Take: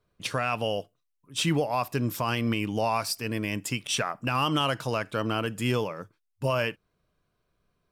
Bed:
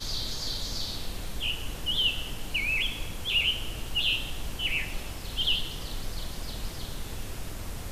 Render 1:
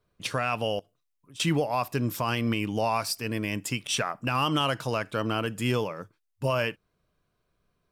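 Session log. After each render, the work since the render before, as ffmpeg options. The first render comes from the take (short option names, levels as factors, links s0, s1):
-filter_complex "[0:a]asettb=1/sr,asplit=3[s0][s1][s2];[s0]atrim=end=0.794[s3];[s1]atrim=start=0.79:end=1.4,asetpts=PTS-STARTPTS,afade=t=in:d=0.004:c=qsin,afade=t=out:st=0.606:d=0.004:c=qsin,acompressor=threshold=0.00501:ratio=6:attack=3.2:release=140:knee=1:detection=peak[s4];[s2]atrim=start=1.396[s5];[s3][s4]acrossfade=d=0.004:c1=hsin:c2=qsin[s6];[s6][s5]acrossfade=d=0.004:c1=qsin:c2=hsin"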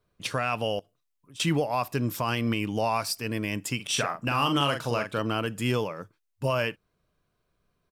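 -filter_complex "[0:a]asplit=3[s0][s1][s2];[s0]afade=t=out:st=3.79:d=0.02[s3];[s1]asplit=2[s4][s5];[s5]adelay=42,volume=0.501[s6];[s4][s6]amix=inputs=2:normalize=0,afade=t=in:st=3.79:d=0.02,afade=t=out:st=5.18:d=0.02[s7];[s2]afade=t=in:st=5.18:d=0.02[s8];[s3][s7][s8]amix=inputs=3:normalize=0"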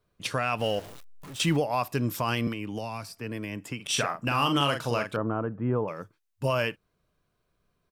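-filter_complex "[0:a]asettb=1/sr,asplit=3[s0][s1][s2];[s0]atrim=end=0.594[s3];[s1]atrim=start=0.59:end=1.57,asetpts=PTS-STARTPTS,afade=t=in:d=0.004:c=qsin,afade=t=out:st=0.976:d=0.004:c=qsin,aeval=exprs='val(0)+0.5*0.0119*sgn(val(0))':c=same[s4];[s2]atrim=start=1.566[s5];[s3][s4]acrossfade=d=0.004:c1=hsin:c2=qsin[s6];[s6][s5]acrossfade=d=0.004:c1=qsin:c2=hsin,asettb=1/sr,asplit=3[s7][s8][s9];[s7]atrim=end=2.474[s10];[s8]atrim=start=2.47:end=3.86,asetpts=PTS-STARTPTS,afade=t=in:d=0.004:c=qsin,afade=t=out:st=1.386:d=0.004:c=qsin,acrossover=split=270|2300[s11][s12][s13];[s11]acompressor=threshold=0.0158:ratio=4[s14];[s12]acompressor=threshold=0.0158:ratio=4[s15];[s13]acompressor=threshold=0.00447:ratio=4[s16];[s14][s15][s16]amix=inputs=3:normalize=0[s17];[s9]atrim=start=3.856[s18];[s10][s17]acrossfade=d=0.004:c1=hsin:c2=qsin[s19];[s19][s18]acrossfade=d=0.004:c1=qsin:c2=hsin,asettb=1/sr,asplit=3[s20][s21][s22];[s20]atrim=end=5.164[s23];[s21]atrim=start=5.16:end=5.88,asetpts=PTS-STARTPTS,afade=t=in:d=0.004:c=qsin,afade=t=out:st=0.716:d=0.004:c=qsin,lowpass=f=1300:w=0.5412,lowpass=f=1300:w=1.3066[s24];[s22]atrim=start=5.876[s25];[s23][s24]acrossfade=d=0.004:c1=hsin:c2=qsin[s26];[s26][s25]acrossfade=d=0.004:c1=qsin:c2=hsin"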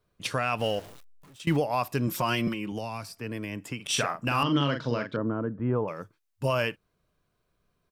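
-filter_complex "[0:a]asettb=1/sr,asplit=3[s0][s1][s2];[s0]atrim=end=2.074[s3];[s1]atrim=start=2.07:end=2.72,asetpts=PTS-STARTPTS,afade=t=in:d=0.004:c=qsin,afade=t=out:st=0.646:d=0.004:c=qsin,aecho=1:1:5.5:0.65,atrim=end_sample=28665[s4];[s2]atrim=start=2.716[s5];[s3][s4]acrossfade=d=0.004:c1=hsin:c2=qsin[s6];[s6][s5]acrossfade=d=0.004:c1=qsin:c2=hsin,asettb=1/sr,asplit=3[s7][s8][s9];[s7]atrim=end=4.434[s10];[s8]atrim=start=4.43:end=5.6,asetpts=PTS-STARTPTS,afade=t=in:d=0.004:c=qsin,afade=t=out:st=1.166:d=0.004:c=qsin,highpass=100,equalizer=f=140:t=q:w=4:g=4,equalizer=f=260:t=q:w=4:g=6,equalizer=f=770:t=q:w=4:g=-10,equalizer=f=1200:t=q:w=4:g=-5,equalizer=f=2600:t=q:w=4:g=-10,lowpass=f=4800:w=0.5412,lowpass=f=4800:w=1.3066[s11];[s9]atrim=start=5.596[s12];[s10][s11]acrossfade=d=0.004:c1=hsin:c2=qsin[s13];[s13][s12]acrossfade=d=0.004:c1=qsin:c2=hsin,asplit=2[s14][s15];[s14]atrim=end=1.47,asetpts=PTS-STARTPTS,afade=t=out:st=0.66:d=0.81:silence=0.0891251[s16];[s15]atrim=start=1.47,asetpts=PTS-STARTPTS,afade=t=in:d=0.004:c=hsin:silence=0.0891251[s17];[s16][s17]concat=n=2:v=0:a=1"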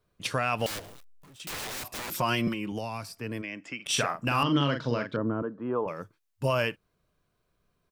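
-filter_complex "[0:a]asettb=1/sr,asplit=3[s0][s1][s2];[s0]atrim=end=0.664[s3];[s1]atrim=start=0.66:end=2.12,asetpts=PTS-STARTPTS,afade=t=in:d=0.004:c=qsin,afade=t=out:st=1.456:d=0.004:c=qsin,aeval=exprs='(mod(37.6*val(0)+1,2)-1)/37.6':c=same[s4];[s2]atrim=start=2.116[s5];[s3][s4]acrossfade=d=0.004:c1=hsin:c2=qsin[s6];[s6][s5]acrossfade=d=0.004:c1=qsin:c2=hsin,asplit=3[s7][s8][s9];[s7]afade=t=out:st=3.41:d=0.02[s10];[s8]highpass=280,equalizer=f=430:t=q:w=4:g=-8,equalizer=f=940:t=q:w=4:g=-9,equalizer=f=2200:t=q:w=4:g=5,equalizer=f=4000:t=q:w=4:g=-8,lowpass=f=6000:w=0.5412,lowpass=f=6000:w=1.3066,afade=t=in:st=3.41:d=0.02,afade=t=out:st=3.85:d=0.02[s11];[s9]afade=t=in:st=3.85:d=0.02[s12];[s10][s11][s12]amix=inputs=3:normalize=0,asettb=1/sr,asplit=3[s13][s14][s15];[s13]atrim=end=5.424[s16];[s14]atrim=start=5.42:end=5.86,asetpts=PTS-STARTPTS,afade=t=in:d=0.004:c=qsin,afade=t=out:st=0.436:d=0.004:c=qsin,highpass=280,equalizer=f=1100:t=q:w=4:g=5,equalizer=f=2100:t=q:w=4:g=-7,equalizer=f=4100:t=q:w=4:g=8,lowpass=f=7200:w=0.5412,lowpass=f=7200:w=1.3066[s17];[s15]atrim=start=5.856[s18];[s16][s17]acrossfade=d=0.004:c1=hsin:c2=qsin[s19];[s19][s18]acrossfade=d=0.004:c1=qsin:c2=hsin"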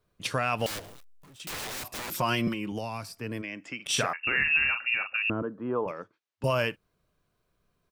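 -filter_complex "[0:a]asettb=1/sr,asplit=3[s0][s1][s2];[s0]atrim=end=4.134[s3];[s1]atrim=start=4.13:end=5.3,asetpts=PTS-STARTPTS,afade=t=in:d=0.004:c=qsin,afade=t=out:st=1.166:d=0.004:c=qsin,lowpass=f=2500:t=q:w=0.5098,lowpass=f=2500:t=q:w=0.6013,lowpass=f=2500:t=q:w=0.9,lowpass=f=2500:t=q:w=2.563,afreqshift=-2900[s4];[s2]atrim=start=5.296[s5];[s3][s4]acrossfade=d=0.004:c1=hsin:c2=qsin[s6];[s6][s5]acrossfade=d=0.004:c1=qsin:c2=hsin,asettb=1/sr,asplit=3[s7][s8][s9];[s7]atrim=end=5.914[s10];[s8]atrim=start=5.91:end=6.44,asetpts=PTS-STARTPTS,afade=t=in:d=0.004:c=qsin,afade=t=out:st=0.526:d=0.004:c=qsin,highpass=250,lowpass=4400[s11];[s9]atrim=start=6.436[s12];[s10][s11]acrossfade=d=0.004:c1=hsin:c2=qsin[s13];[s13][s12]acrossfade=d=0.004:c1=qsin:c2=hsin"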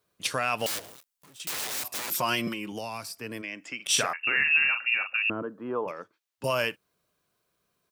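-af "highpass=f=260:p=1,highshelf=f=4300:g=7.5"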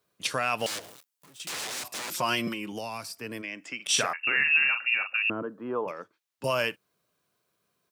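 -filter_complex "[0:a]acrossover=split=9900[s0][s1];[s1]acompressor=threshold=0.00447:ratio=4:attack=1:release=60[s2];[s0][s2]amix=inputs=2:normalize=0,highpass=87"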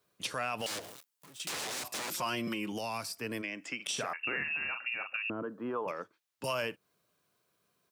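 -filter_complex "[0:a]acrossover=split=1000[s0][s1];[s0]alimiter=level_in=2:limit=0.0631:level=0:latency=1,volume=0.501[s2];[s1]acompressor=threshold=0.02:ratio=10[s3];[s2][s3]amix=inputs=2:normalize=0"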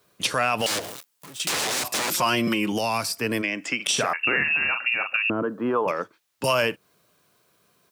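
-af "volume=3.98"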